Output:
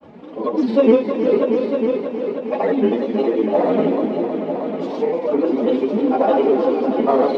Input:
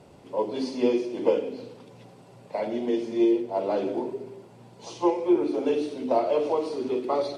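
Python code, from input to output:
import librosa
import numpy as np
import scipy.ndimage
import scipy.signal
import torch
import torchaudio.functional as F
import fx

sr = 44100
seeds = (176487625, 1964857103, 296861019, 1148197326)

p1 = fx.dead_time(x, sr, dead_ms=0.054)
p2 = p1 + 0.87 * np.pad(p1, (int(4.1 * sr / 1000.0), 0))[:len(p1)]
p3 = fx.granulator(p2, sr, seeds[0], grain_ms=100.0, per_s=20.0, spray_ms=100.0, spread_st=3)
p4 = np.clip(p3, -10.0 ** (-22.5 / 20.0), 10.0 ** (-22.5 / 20.0))
p5 = p3 + F.gain(torch.from_numpy(p4), -8.5).numpy()
p6 = fx.bandpass_edges(p5, sr, low_hz=100.0, high_hz=2400.0)
p7 = p6 + fx.echo_heads(p6, sr, ms=316, heads='all three', feedback_pct=43, wet_db=-10, dry=0)
p8 = fx.end_taper(p7, sr, db_per_s=160.0)
y = F.gain(torch.from_numpy(p8), 6.0).numpy()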